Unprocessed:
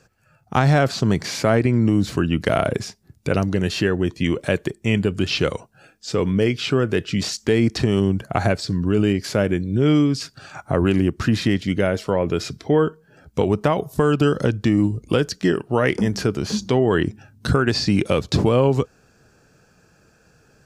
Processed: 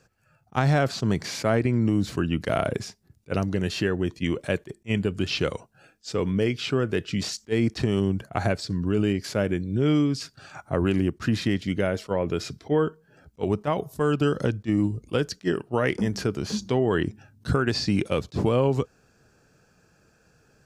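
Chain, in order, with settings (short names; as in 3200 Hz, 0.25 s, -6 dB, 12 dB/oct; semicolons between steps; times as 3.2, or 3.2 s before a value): attack slew limiter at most 540 dB/s; gain -5 dB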